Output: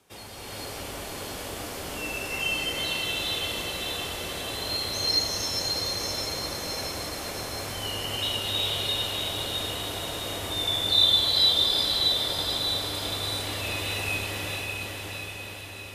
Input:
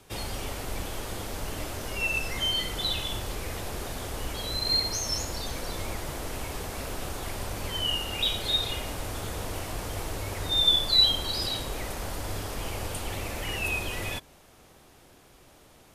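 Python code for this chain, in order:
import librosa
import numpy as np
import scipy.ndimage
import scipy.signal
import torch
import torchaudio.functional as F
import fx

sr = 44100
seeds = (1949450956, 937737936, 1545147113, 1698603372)

y = fx.highpass(x, sr, hz=170.0, slope=6)
y = fx.echo_diffused(y, sr, ms=617, feedback_pct=61, wet_db=-3.5)
y = fx.rev_gated(y, sr, seeds[0], gate_ms=480, shape='rising', drr_db=-6.0)
y = y * librosa.db_to_amplitude(-7.0)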